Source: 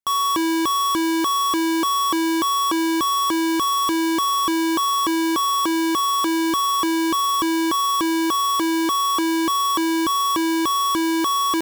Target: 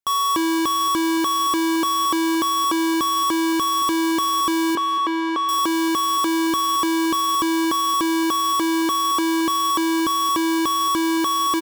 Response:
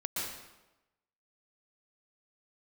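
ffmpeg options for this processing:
-filter_complex "[0:a]asettb=1/sr,asplit=3[link_01][link_02][link_03];[link_01]atrim=end=4.754[link_04];[link_02]atrim=start=4.75:end=5.49,asetpts=PTS-STARTPTS,afade=type=in:duration=0.004:curve=qsin,afade=type=out:start_time=0.736:duration=0.004:curve=qsin,highpass=340,lowpass=3000[link_05];[link_03]atrim=start=5.486[link_06];[link_04][link_05]acrossfade=duration=0.004:curve1=hsin:curve2=qsin[link_07];[link_07][link_06]acrossfade=duration=0.004:curve1=qsin:curve2=hsin,aecho=1:1:224|448|672|896:0.15|0.0643|0.0277|0.0119"

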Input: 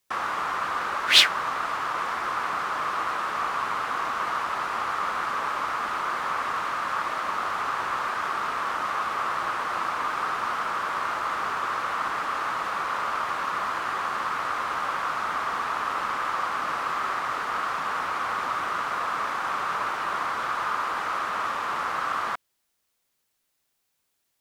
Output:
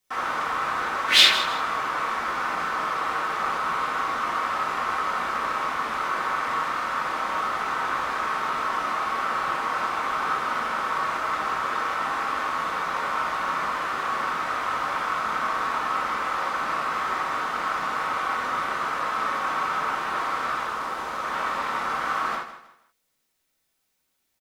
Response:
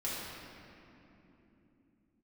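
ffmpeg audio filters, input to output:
-filter_complex "[0:a]asettb=1/sr,asplit=3[link_01][link_02][link_03];[link_01]atrim=end=20.634[link_04];[link_02]atrim=start=20.63:end=21.24,asetpts=PTS-STARTPTS,afade=type=in:duration=0.004:curve=qsin,afade=type=out:start_time=0.606:duration=0.004:curve=qsin,equalizer=frequency=1900:width=0.54:gain=-5[link_05];[link_03]atrim=start=21.236[link_06];[link_04][link_05]acrossfade=duration=0.004:curve1=hsin:curve2=qsin[link_07];[link_07][link_06]acrossfade=duration=0.004:curve1=qsin:curve2=hsin,aecho=1:1:158|316|474:0.237|0.0711|0.0213[link_08];[1:a]atrim=start_sample=2205,atrim=end_sample=4410[link_09];[link_08][link_09]afir=irnorm=-1:irlink=0"

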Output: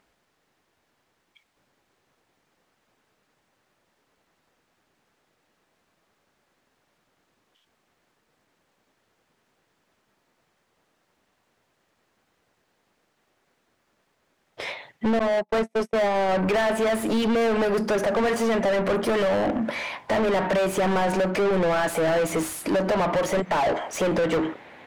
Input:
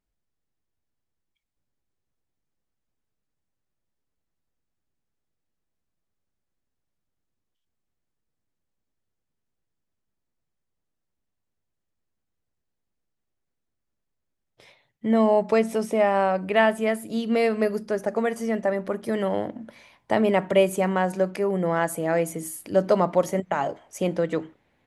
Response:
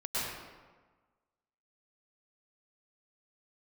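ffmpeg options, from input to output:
-filter_complex "[0:a]acompressor=threshold=-24dB:ratio=12,asettb=1/sr,asplit=3[link_01][link_02][link_03];[link_01]atrim=end=15.194[link_04];[link_02]atrim=start=15.19:end=16.29,asetpts=PTS-STARTPTS,afade=type=in:duration=0.004:curve=qsin,afade=type=out:start_time=1.096:duration=0.004:curve=qsin,agate=range=-53dB:threshold=-27dB:ratio=16:detection=peak[link_05];[link_03]atrim=start=16.286[link_06];[link_04][link_05]acrossfade=duration=0.004:curve1=hsin:curve2=qsin[link_07];[link_07][link_06]acrossfade=duration=0.004:curve1=qsin:curve2=hsin,asplit=2[link_08][link_09];[link_09]highpass=frequency=720:poles=1,volume=33dB,asoftclip=type=tanh:threshold=-15dB[link_10];[link_08][link_10]amix=inputs=2:normalize=0,lowpass=frequency=1900:poles=1,volume=-6dB"

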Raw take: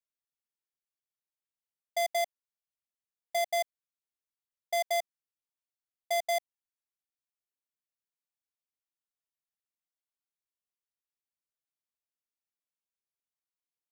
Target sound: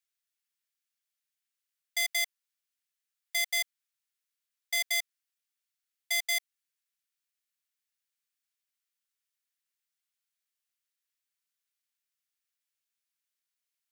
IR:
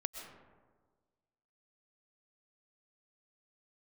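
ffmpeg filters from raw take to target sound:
-af "highpass=frequency=1400:width=0.5412,highpass=frequency=1400:width=1.3066,volume=7dB"

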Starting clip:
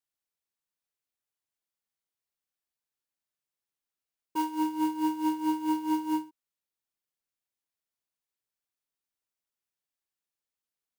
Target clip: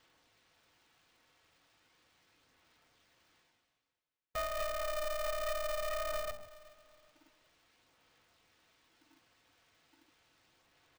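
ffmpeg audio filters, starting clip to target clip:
ffmpeg -i in.wav -filter_complex "[0:a]lowpass=3600,bandreject=frequency=60:width_type=h:width=6,bandreject=frequency=120:width_type=h:width=6,bandreject=frequency=180:width_type=h:width=6,bandreject=frequency=240:width_type=h:width=6,bandreject=frequency=300:width_type=h:width=6,bandreject=frequency=360:width_type=h:width=6,bandreject=frequency=420:width_type=h:width=6,bandreject=frequency=480:width_type=h:width=6,bandreject=frequency=540:width_type=h:width=6,bandreject=frequency=600:width_type=h:width=6,aecho=1:1:5:0.32,aeval=exprs='0.355*sin(PI/2*7.08*val(0)/0.355)':channel_layout=same,aphaser=in_gain=1:out_gain=1:delay=2.5:decay=0.28:speed=0.37:type=sinusoidal,areverse,acompressor=mode=upward:threshold=-21dB:ratio=2.5,areverse,alimiter=limit=-23dB:level=0:latency=1:release=130,afwtdn=0.0178,asplit=2[link_01][link_02];[link_02]aecho=0:1:383|766|1149:0.106|0.035|0.0115[link_03];[link_01][link_03]amix=inputs=2:normalize=0,aeval=exprs='val(0)*sgn(sin(2*PI*300*n/s))':channel_layout=same,volume=-8.5dB" out.wav

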